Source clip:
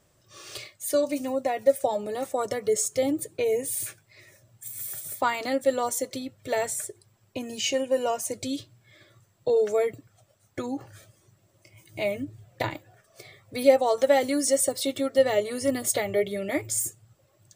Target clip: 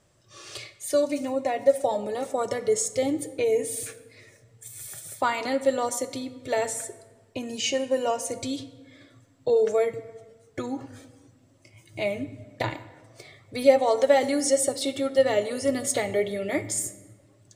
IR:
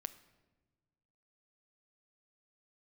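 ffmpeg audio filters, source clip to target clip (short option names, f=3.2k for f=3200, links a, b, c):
-filter_complex "[0:a]lowpass=10k[a];[1:a]atrim=start_sample=2205,asetrate=34839,aresample=44100[b];[a][b]afir=irnorm=-1:irlink=0,volume=2.5dB"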